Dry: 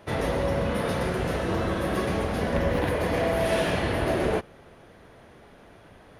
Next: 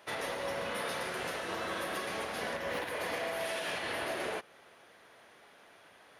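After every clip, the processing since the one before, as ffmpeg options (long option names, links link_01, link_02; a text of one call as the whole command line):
ffmpeg -i in.wav -af "highpass=frequency=1400:poles=1,alimiter=level_in=2dB:limit=-24dB:level=0:latency=1:release=191,volume=-2dB" out.wav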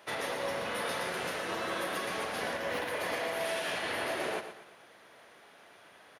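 ffmpeg -i in.wav -filter_complex "[0:a]highpass=75,asplit=2[link_01][link_02];[link_02]aecho=0:1:118|236|354|472:0.316|0.12|0.0457|0.0174[link_03];[link_01][link_03]amix=inputs=2:normalize=0,volume=1.5dB" out.wav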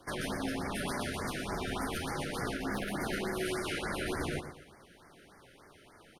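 ffmpeg -i in.wav -af "afreqshift=-290,afftfilt=real='re*(1-between(b*sr/1024,890*pow(3300/890,0.5+0.5*sin(2*PI*3.4*pts/sr))/1.41,890*pow(3300/890,0.5+0.5*sin(2*PI*3.4*pts/sr))*1.41))':imag='im*(1-between(b*sr/1024,890*pow(3300/890,0.5+0.5*sin(2*PI*3.4*pts/sr))/1.41,890*pow(3300/890,0.5+0.5*sin(2*PI*3.4*pts/sr))*1.41))':win_size=1024:overlap=0.75" out.wav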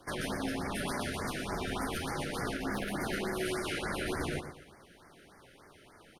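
ffmpeg -i in.wav -af "tremolo=f=250:d=0.261,volume=1.5dB" out.wav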